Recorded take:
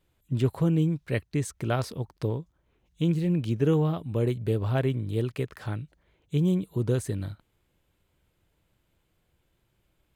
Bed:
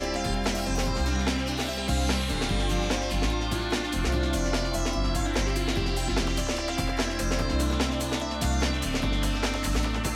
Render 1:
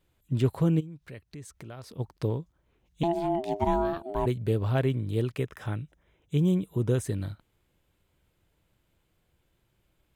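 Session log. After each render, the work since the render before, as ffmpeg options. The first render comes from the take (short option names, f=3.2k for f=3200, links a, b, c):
-filter_complex "[0:a]asplit=3[a][b][c];[a]afade=t=out:st=0.79:d=0.02[d];[b]acompressor=threshold=-45dB:ratio=3:attack=3.2:release=140:knee=1:detection=peak,afade=t=in:st=0.79:d=0.02,afade=t=out:st=1.98:d=0.02[e];[c]afade=t=in:st=1.98:d=0.02[f];[d][e][f]amix=inputs=3:normalize=0,asettb=1/sr,asplit=3[g][h][i];[g]atrim=end=3.034[j];[h]atrim=start=3.03:end=4.26,asetpts=PTS-STARTPTS,afade=t=in:d=0.004:c=qsin,afade=t=out:st=1.226:d=0.004:c=qsin,aeval=exprs='val(0)*sin(2*PI*510*n/s)':c=same[k];[i]atrim=start=4.256[l];[j][k]acrossfade=d=0.004:c1=hsin:c2=qsin[m];[m][l]acrossfade=d=0.004:c1=qsin:c2=hsin,asettb=1/sr,asplit=3[n][o][p];[n]atrim=end=5.374[q];[o]atrim=start=5.37:end=7.03,asetpts=PTS-STARTPTS,afade=t=in:d=0.004:c=qsin,afade=t=out:st=1.656:d=0.004:c=qsin,asuperstop=centerf=4400:order=4:qfactor=4.8[r];[p]atrim=start=7.026[s];[q][r]acrossfade=d=0.004:c1=hsin:c2=qsin[t];[t][s]acrossfade=d=0.004:c1=qsin:c2=hsin"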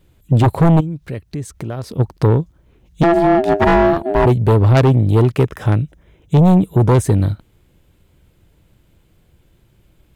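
-filter_complex "[0:a]asplit=2[a][b];[b]adynamicsmooth=sensitivity=3:basefreq=590,volume=1dB[c];[a][c]amix=inputs=2:normalize=0,aeval=exprs='0.447*sin(PI/2*2.51*val(0)/0.447)':c=same"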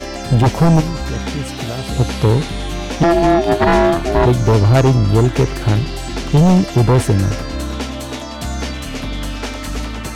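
-filter_complex "[1:a]volume=2.5dB[a];[0:a][a]amix=inputs=2:normalize=0"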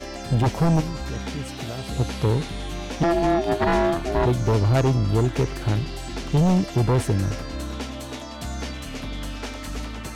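-af "volume=-8dB"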